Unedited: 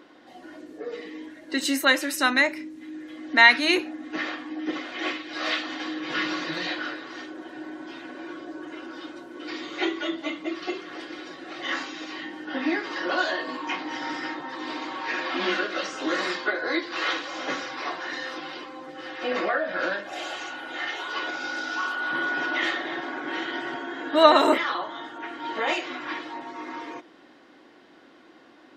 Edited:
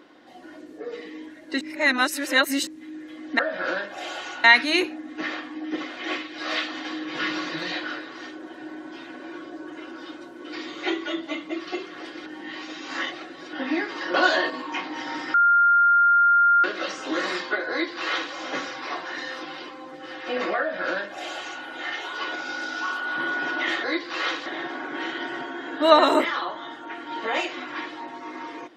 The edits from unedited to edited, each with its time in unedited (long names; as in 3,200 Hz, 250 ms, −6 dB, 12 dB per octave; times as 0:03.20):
0:01.61–0:02.67: reverse
0:11.21–0:12.48: reverse
0:13.09–0:13.45: clip gain +5.5 dB
0:14.29–0:15.59: beep over 1,400 Hz −14 dBFS
0:16.66–0:17.28: duplicate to 0:22.79
0:19.54–0:20.59: duplicate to 0:03.39